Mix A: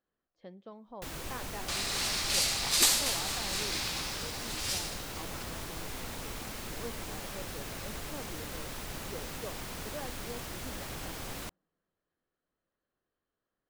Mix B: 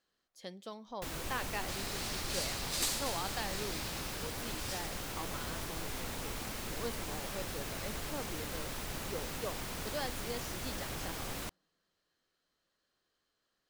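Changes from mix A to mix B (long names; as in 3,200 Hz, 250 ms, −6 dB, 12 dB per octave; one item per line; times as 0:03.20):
speech: remove head-to-tape spacing loss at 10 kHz 44 dB
second sound −10.0 dB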